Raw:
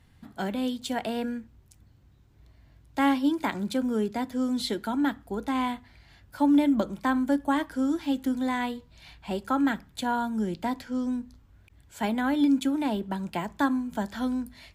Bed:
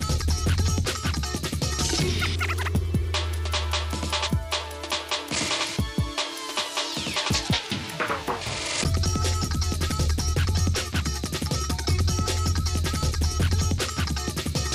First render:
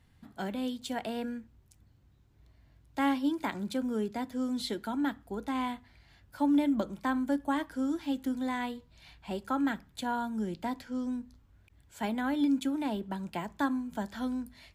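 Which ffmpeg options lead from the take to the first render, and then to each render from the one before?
-af "volume=-5dB"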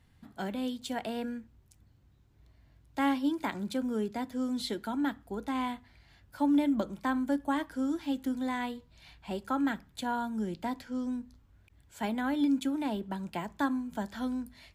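-af anull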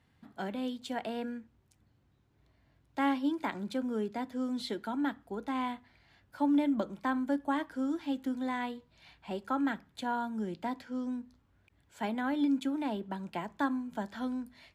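-af "highpass=f=180:p=1,highshelf=f=5.5k:g=-9.5"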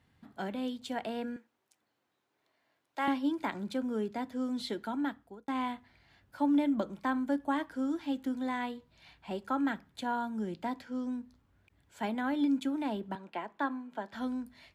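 -filter_complex "[0:a]asettb=1/sr,asplit=3[a][b][c];[a]atrim=end=1.364[d];[b]atrim=start=1.36:end=3.08,asetpts=PTS-STARTPTS,afade=t=in:d=0.004:c=qsin,afade=t=out:st=1.716:d=0.004:c=qsin,highpass=470[e];[c]atrim=start=3.076[f];[d][e]acrossfade=d=0.004:c1=hsin:c2=qsin[g];[g][f]acrossfade=d=0.004:c1=qsin:c2=hsin,asettb=1/sr,asplit=3[h][i][j];[h]atrim=end=13.154[k];[i]atrim=start=13.15:end=14.13,asetpts=PTS-STARTPTS,afade=t=in:d=0.004:c=qsin,afade=t=out:st=0.976:d=0.004:c=qsin,acrossover=split=260 4000:gain=0.1 1 0.224[l][m][n];[l][m][n]amix=inputs=3:normalize=0[o];[j]atrim=start=14.126[p];[k][o]acrossfade=d=0.004:c1=hsin:c2=qsin[q];[q][p]acrossfade=d=0.004:c1=qsin:c2=hsin,asplit=2[r][s];[r]atrim=end=5.48,asetpts=PTS-STARTPTS,afade=t=out:st=4.82:d=0.66:c=qsin[t];[s]atrim=start=5.48,asetpts=PTS-STARTPTS,afade=t=in:d=0.004:c=hsin[u];[t][u]concat=n=2:v=0:a=1"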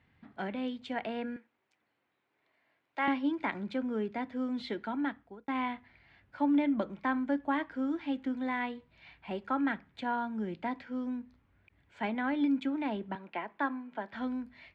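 -af "lowpass=3.3k,equalizer=f=2.2k:t=o:w=0.68:g=6.5"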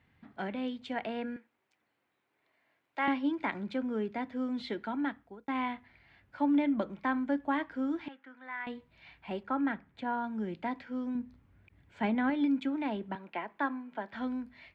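-filter_complex "[0:a]asettb=1/sr,asplit=3[a][b][c];[a]atrim=end=8.084[d];[b]atrim=start=8.08:end=8.67,asetpts=PTS-STARTPTS,afade=t=in:d=0.004:c=qsin,afade=t=out:st=0.586:d=0.004:c=qsin,bandpass=f=1.5k:t=q:w=2.1[e];[c]atrim=start=8.666[f];[d][e]acrossfade=d=0.004:c1=hsin:c2=qsin[g];[g][f]acrossfade=d=0.004:c1=qsin:c2=hsin,asettb=1/sr,asplit=3[h][i][j];[h]atrim=end=9.434[k];[i]atrim=start=9.43:end=10.24,asetpts=PTS-STARTPTS,afade=t=in:d=0.004:c=qsin,afade=t=out:st=0.806:d=0.004:c=qsin,highshelf=f=2.8k:g=-9[l];[j]atrim=start=10.236[m];[k][l]acrossfade=d=0.004:c1=hsin:c2=qsin[n];[n][m]acrossfade=d=0.004:c1=qsin:c2=hsin,asettb=1/sr,asplit=3[o][p][q];[o]atrim=end=11.154[r];[p]atrim=start=11.15:end=12.3,asetpts=PTS-STARTPTS,afade=t=in:d=0.004:c=qsin,afade=t=out:st=1.146:d=0.004:c=qsin,equalizer=f=110:w=0.33:g=7[s];[q]atrim=start=12.296[t];[r][s]acrossfade=d=0.004:c1=hsin:c2=qsin[u];[u][t]acrossfade=d=0.004:c1=qsin:c2=hsin"

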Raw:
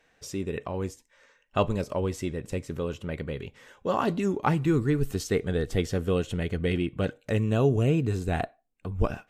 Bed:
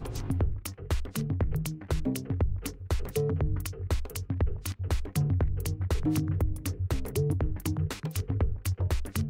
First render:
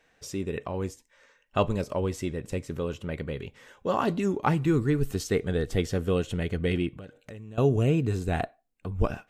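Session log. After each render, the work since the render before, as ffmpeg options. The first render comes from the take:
-filter_complex "[0:a]asettb=1/sr,asplit=3[a][b][c];[a]atrim=end=6.944[d];[b]atrim=start=6.94:end=7.58,asetpts=PTS-STARTPTS,afade=t=in:d=0.004:c=qsin,afade=t=out:st=0.636:d=0.004:c=qsin,acompressor=threshold=-40dB:ratio=6:attack=3.2:release=140:knee=1:detection=peak[e];[c]atrim=start=7.576[f];[d][e]acrossfade=d=0.004:c1=hsin:c2=qsin[g];[g][f]acrossfade=d=0.004:c1=qsin:c2=hsin"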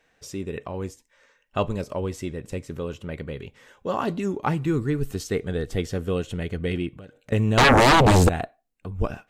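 -filter_complex "[0:a]asettb=1/sr,asplit=3[a][b][c];[a]atrim=end=7.324[d];[b]atrim=start=7.32:end=8.29,asetpts=PTS-STARTPTS,afade=t=in:d=0.004:c=qsin,afade=t=out:st=0.966:d=0.004:c=qsin,aeval=exprs='0.266*sin(PI/2*7.94*val(0)/0.266)':c=same[e];[c]atrim=start=8.286[f];[d][e]acrossfade=d=0.004:c1=hsin:c2=qsin[g];[g][f]acrossfade=d=0.004:c1=qsin:c2=hsin"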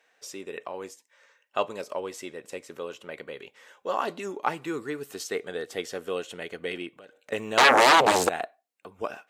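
-af "highpass=490"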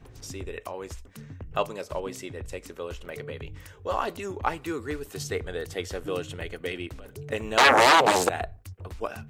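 -filter_complex "[1:a]volume=-12.5dB[a];[0:a][a]amix=inputs=2:normalize=0"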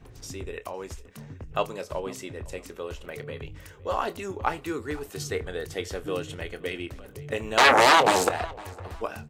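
-filter_complex "[0:a]asplit=2[a][b];[b]adelay=26,volume=-13dB[c];[a][c]amix=inputs=2:normalize=0,asplit=2[d][e];[e]adelay=508,lowpass=f=4k:p=1,volume=-21dB,asplit=2[f][g];[g]adelay=508,lowpass=f=4k:p=1,volume=0.33[h];[d][f][h]amix=inputs=3:normalize=0"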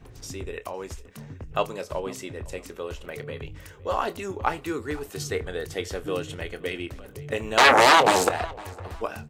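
-af "volume=1.5dB"

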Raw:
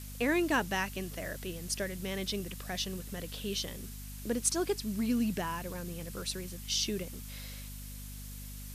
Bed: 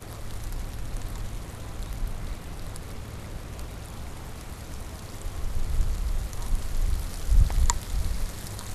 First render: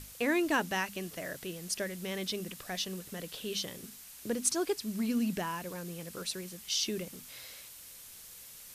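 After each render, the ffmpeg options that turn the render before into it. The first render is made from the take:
-af "bandreject=f=50:t=h:w=6,bandreject=f=100:t=h:w=6,bandreject=f=150:t=h:w=6,bandreject=f=200:t=h:w=6,bandreject=f=250:t=h:w=6"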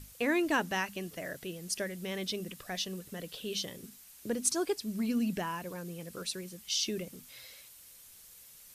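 -af "afftdn=nr=6:nf=-51"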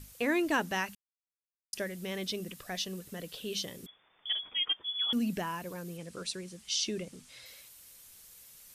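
-filter_complex "[0:a]asettb=1/sr,asplit=3[a][b][c];[a]atrim=end=3.864[d];[b]atrim=start=3.86:end=5.13,asetpts=PTS-STARTPTS,afade=t=in:d=0.004:c=qsin,afade=t=out:st=1.266:d=0.004:c=qsin,lowpass=f=3.1k:t=q:w=0.5098,lowpass=f=3.1k:t=q:w=0.6013,lowpass=f=3.1k:t=q:w=0.9,lowpass=f=3.1k:t=q:w=2.563,afreqshift=-3600[e];[c]atrim=start=5.126[f];[d][e]acrossfade=d=0.004:c1=hsin:c2=qsin[g];[g][f]acrossfade=d=0.004:c1=qsin:c2=hsin,asettb=1/sr,asplit=3[h][i][j];[h]atrim=end=5.974[k];[i]atrim=start=5.97:end=7.46,asetpts=PTS-STARTPTS,afade=t=in:d=0.004:c=qsin,afade=t=out:st=1.486:d=0.004:c=qsin,lowpass=f=9.7k:w=0.5412,lowpass=f=9.7k:w=1.3066[l];[j]atrim=start=7.456[m];[k][l]acrossfade=d=0.004:c1=hsin:c2=qsin[n];[n][m]acrossfade=d=0.004:c1=qsin:c2=hsin,asplit=3[o][p][q];[o]atrim=end=0.95,asetpts=PTS-STARTPTS,afade=t=out:st=0.946:d=0.004:c=hsin[r];[p]atrim=start=0.95:end=1.73,asetpts=PTS-STARTPTS,volume=0[s];[q]atrim=start=1.73,asetpts=PTS-STARTPTS,afade=t=in:d=0.004:c=hsin[t];[r][s][t]concat=n=3:v=0:a=1"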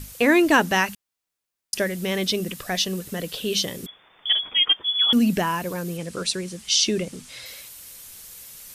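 -af "volume=12dB"

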